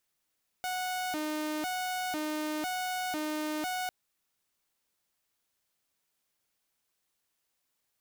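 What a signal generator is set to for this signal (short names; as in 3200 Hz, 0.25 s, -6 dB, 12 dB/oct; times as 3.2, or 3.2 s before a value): siren hi-lo 306–736 Hz 1/s saw -29 dBFS 3.25 s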